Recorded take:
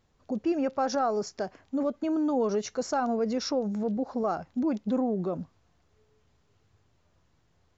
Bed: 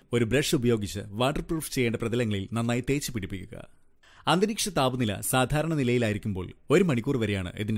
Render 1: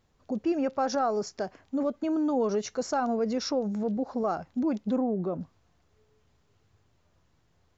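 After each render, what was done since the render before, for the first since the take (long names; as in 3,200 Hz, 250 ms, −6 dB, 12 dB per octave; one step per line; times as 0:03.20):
0:04.96–0:05.41: high-shelf EQ 3,200 Hz −11 dB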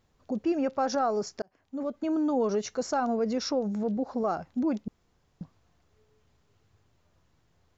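0:01.42–0:02.11: fade in
0:04.88–0:05.41: fill with room tone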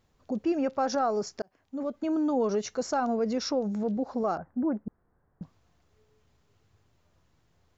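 0:04.37–0:05.42: Chebyshev low-pass filter 1,700 Hz, order 4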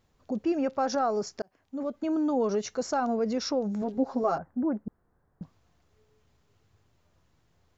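0:03.81–0:04.39: comb filter 7.4 ms, depth 77%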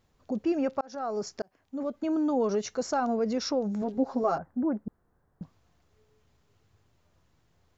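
0:00.81–0:01.30: fade in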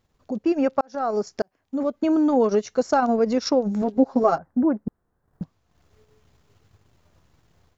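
transient designer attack +2 dB, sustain −10 dB
automatic gain control gain up to 7.5 dB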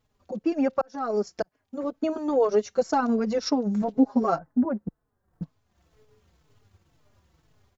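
barber-pole flanger 4.2 ms −2 Hz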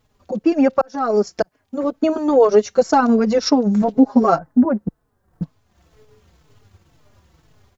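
level +9 dB
brickwall limiter −3 dBFS, peak gain reduction 2 dB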